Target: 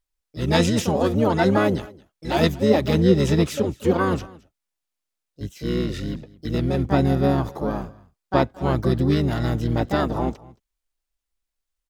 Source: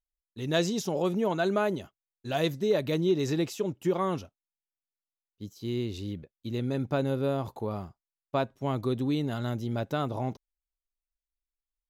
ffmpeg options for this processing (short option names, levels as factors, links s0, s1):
-filter_complex "[0:a]aecho=1:1:221:0.0794,acontrast=37,asplit=3[s0][s1][s2];[s1]asetrate=22050,aresample=44100,atempo=2,volume=0.794[s3];[s2]asetrate=58866,aresample=44100,atempo=0.749154,volume=0.562[s4];[s0][s3][s4]amix=inputs=3:normalize=0"